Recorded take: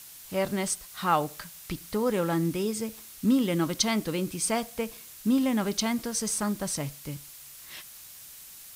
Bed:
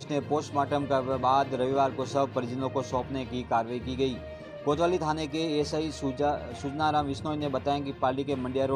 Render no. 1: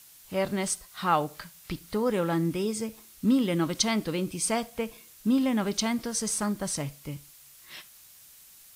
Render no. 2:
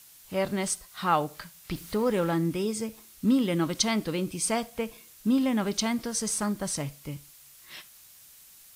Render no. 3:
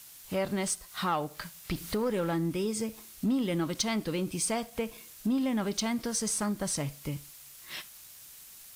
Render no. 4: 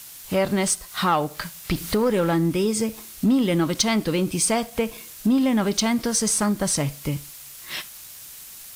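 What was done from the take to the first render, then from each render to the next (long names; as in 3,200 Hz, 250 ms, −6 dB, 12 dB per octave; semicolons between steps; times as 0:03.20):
noise reduction from a noise print 6 dB
0:01.72–0:02.31: mu-law and A-law mismatch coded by mu
downward compressor 2 to 1, threshold −35 dBFS, peak gain reduction 9.5 dB; leveller curve on the samples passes 1
level +9 dB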